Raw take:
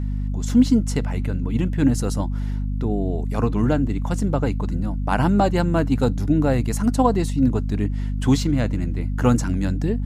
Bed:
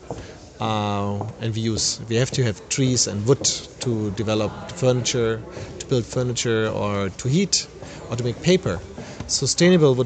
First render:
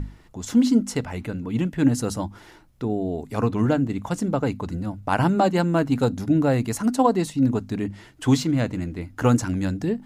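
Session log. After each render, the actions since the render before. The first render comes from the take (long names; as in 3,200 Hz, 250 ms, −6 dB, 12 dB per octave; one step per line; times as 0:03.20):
mains-hum notches 50/100/150/200/250 Hz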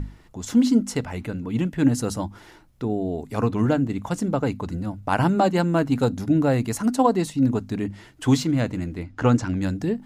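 0:09.03–0:09.62: low-pass filter 5,300 Hz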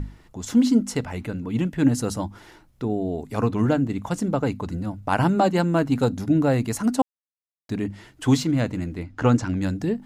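0:07.02–0:07.69: silence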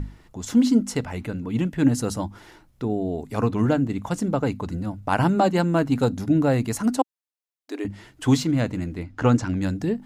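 0:06.97–0:07.85: linear-phase brick-wall high-pass 260 Hz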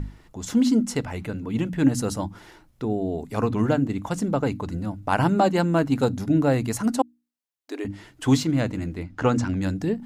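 mains-hum notches 60/120/180/240/300 Hz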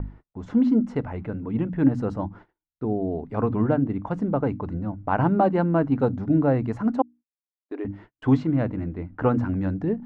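noise gate −43 dBFS, range −42 dB
low-pass filter 1,400 Hz 12 dB per octave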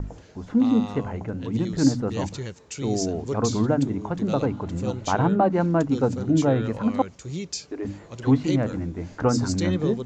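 mix in bed −12.5 dB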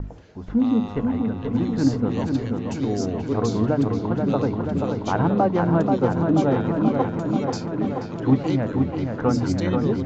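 high-frequency loss of the air 110 metres
delay with a low-pass on its return 483 ms, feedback 72%, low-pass 3,100 Hz, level −4.5 dB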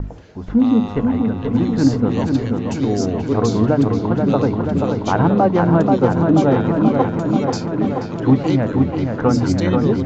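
level +5.5 dB
brickwall limiter −3 dBFS, peak gain reduction 2 dB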